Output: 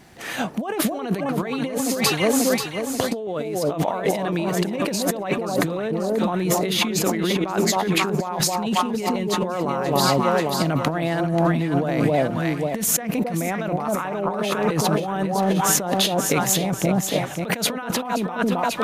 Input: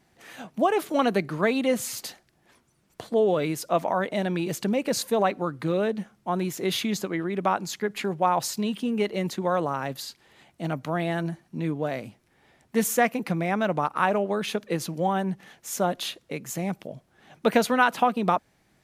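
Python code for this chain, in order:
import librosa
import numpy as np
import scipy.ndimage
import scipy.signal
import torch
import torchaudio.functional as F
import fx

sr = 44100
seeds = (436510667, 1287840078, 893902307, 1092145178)

y = fx.echo_alternate(x, sr, ms=268, hz=940.0, feedback_pct=64, wet_db=-3.5)
y = fx.over_compress(y, sr, threshold_db=-32.0, ratio=-1.0)
y = y * librosa.db_to_amplitude(9.0)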